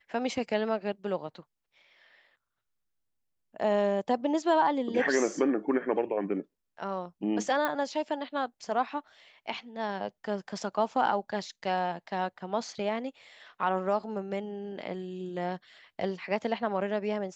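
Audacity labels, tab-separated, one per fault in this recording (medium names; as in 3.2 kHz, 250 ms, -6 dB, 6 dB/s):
7.650000	7.650000	pop -16 dBFS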